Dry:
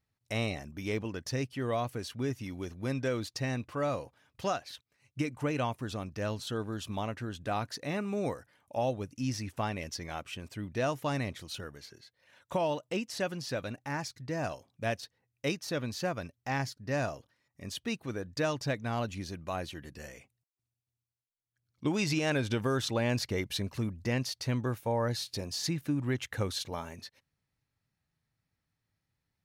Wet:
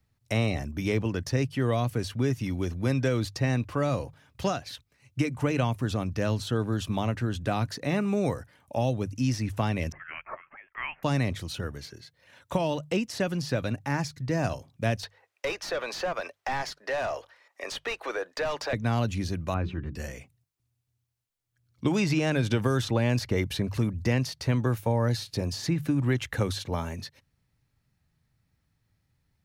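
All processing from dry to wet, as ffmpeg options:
-filter_complex "[0:a]asettb=1/sr,asplit=3[a][b][c];[a]atrim=end=9.924[d];[b]atrim=start=9.92:end=11.03,asetpts=PTS-STARTPTS,afade=t=in:d=0.004:c=qsin,afade=t=out:st=1.106:d=0.004:c=qsin,highpass=f=1.3k:w=0.5412,highpass=f=1.3k:w=1.3066,lowpass=f=3.1k:t=q:w=0.5098,lowpass=f=3.1k:t=q:w=0.6013,lowpass=f=3.1k:t=q:w=0.9,lowpass=f=3.1k:t=q:w=2.563,afreqshift=-3700[e];[c]atrim=start=11.026[f];[d][e]acrossfade=d=0.004:c1=hsin:c2=qsin[g];[g][f]acrossfade=d=0.004:c1=qsin:c2=hsin,asettb=1/sr,asplit=3[h][i][j];[h]atrim=end=15.034[k];[i]atrim=start=15.03:end=18.73,asetpts=PTS-STARTPTS,afade=t=in:d=0.004:c=qsin,afade=t=out:st=3.696:d=0.004:c=qsin,highpass=f=450:w=0.5412,highpass=f=450:w=1.3066,asplit=2[l][m];[m]highpass=f=720:p=1,volume=20dB,asoftclip=type=tanh:threshold=-18.5dB[n];[l][n]amix=inputs=2:normalize=0,lowpass=f=1.8k:p=1,volume=-6dB,acompressor=threshold=-36dB:ratio=2:attack=3.2:release=140:knee=1:detection=peak[o];[j]atrim=start=18.726[p];[k][o]acrossfade=d=0.004:c1=hsin:c2=qsin[q];[q][p]acrossfade=d=0.004:c1=qsin:c2=hsin,asettb=1/sr,asplit=3[r][s][t];[r]atrim=end=19.544[u];[s]atrim=start=19.54:end=19.95,asetpts=PTS-STARTPTS,afade=t=in:d=0.004:c=qsin,afade=t=out:st=0.406:d=0.004:c=qsin,lowpass=1.9k,bandreject=f=60:t=h:w=6,bandreject=f=120:t=h:w=6,bandreject=f=180:t=h:w=6,bandreject=f=240:t=h:w=6,bandreject=f=300:t=h:w=6,bandreject=f=360:t=h:w=6,bandreject=f=420:t=h:w=6,aecho=1:1:0.8:0.41,atrim=end_sample=18081[v];[t]atrim=start=19.946[w];[u][v]acrossfade=d=0.004:c1=hsin:c2=qsin[x];[x][w]acrossfade=d=0.004:c1=qsin:c2=hsin,acrossover=split=150|340|2400[y][z][aa][ab];[y]acompressor=threshold=-41dB:ratio=4[ac];[z]acompressor=threshold=-39dB:ratio=4[ad];[aa]acompressor=threshold=-34dB:ratio=4[ae];[ab]acompressor=threshold=-43dB:ratio=4[af];[ac][ad][ae][af]amix=inputs=4:normalize=0,lowshelf=f=160:g=10,bandreject=f=50:t=h:w=6,bandreject=f=100:t=h:w=6,bandreject=f=150:t=h:w=6,volume=6dB"

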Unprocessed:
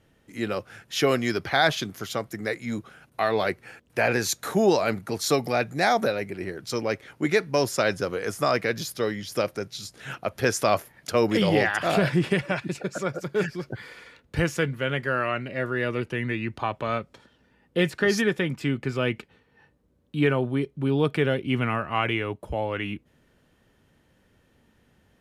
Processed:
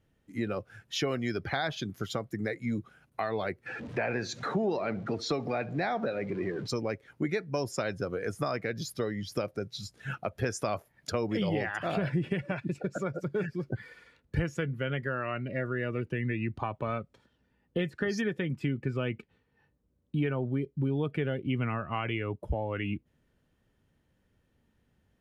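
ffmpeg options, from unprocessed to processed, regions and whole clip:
-filter_complex "[0:a]asettb=1/sr,asplit=3[a][b][c];[a]atrim=end=3.664[d];[b]atrim=start=3.66:end=6.68,asetpts=PTS-STARTPTS,afade=t=in:d=0.004:c=qsin,afade=t=out:st=3.016:d=0.004:c=qsin,aeval=exprs='val(0)+0.5*0.0224*sgn(val(0))':c=same,highpass=130,lowpass=4.1k,aecho=1:1:68|136|204|272:0.119|0.0547|0.0251|0.0116,atrim=end_sample=133182[e];[c]atrim=start=6.676[f];[d][e]acrossfade=d=0.004:c1=hsin:c2=qsin[g];[g][f]acrossfade=d=0.004:c1=qsin:c2=hsin,afftdn=nr=12:nf=-35,acompressor=threshold=-32dB:ratio=3,lowshelf=f=190:g=7"

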